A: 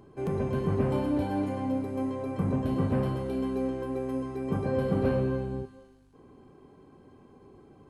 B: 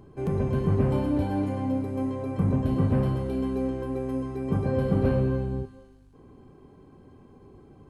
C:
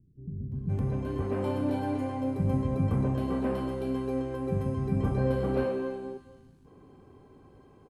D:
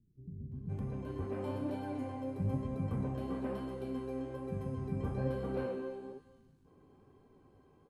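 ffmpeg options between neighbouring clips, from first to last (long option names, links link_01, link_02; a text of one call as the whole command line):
ffmpeg -i in.wav -af "lowshelf=frequency=150:gain=9" out.wav
ffmpeg -i in.wav -filter_complex "[0:a]lowshelf=frequency=110:gain=-4,dynaudnorm=framelen=280:gausssize=5:maxgain=6.5dB,acrossover=split=240[link_01][link_02];[link_02]adelay=520[link_03];[link_01][link_03]amix=inputs=2:normalize=0,volume=-7dB" out.wav
ffmpeg -i in.wav -af "flanger=delay=4.2:depth=9:regen=64:speed=1.1:shape=sinusoidal,volume=-4dB" out.wav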